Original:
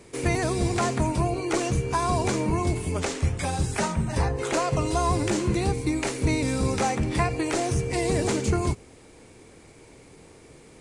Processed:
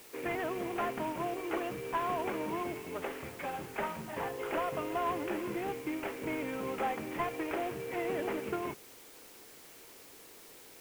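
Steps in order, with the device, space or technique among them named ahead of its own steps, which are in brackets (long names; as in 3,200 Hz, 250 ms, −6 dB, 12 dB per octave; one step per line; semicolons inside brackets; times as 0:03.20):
army field radio (band-pass filter 320–3,300 Hz; variable-slope delta modulation 16 kbit/s; white noise bed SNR 18 dB)
level −6.5 dB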